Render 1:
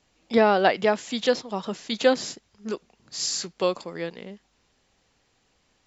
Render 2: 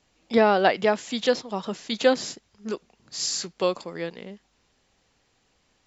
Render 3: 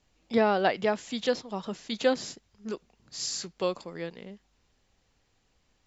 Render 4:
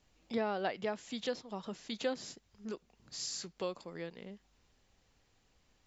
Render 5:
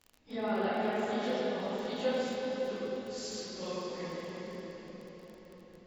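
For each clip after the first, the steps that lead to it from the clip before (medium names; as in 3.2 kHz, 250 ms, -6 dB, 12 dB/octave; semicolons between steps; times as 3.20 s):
no audible change
bass shelf 97 Hz +10.5 dB; trim -5.5 dB
compression 1.5:1, threshold -47 dBFS, peak gain reduction 10.5 dB; trim -1 dB
phase randomisation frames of 100 ms; reverberation RT60 5.3 s, pre-delay 10 ms, DRR -8.5 dB; crackle 25 per s -38 dBFS; trim -4.5 dB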